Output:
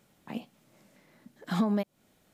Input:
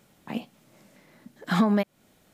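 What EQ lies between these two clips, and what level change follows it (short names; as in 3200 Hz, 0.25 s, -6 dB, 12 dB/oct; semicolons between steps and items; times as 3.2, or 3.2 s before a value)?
dynamic EQ 1800 Hz, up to -6 dB, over -42 dBFS, Q 1; -5.0 dB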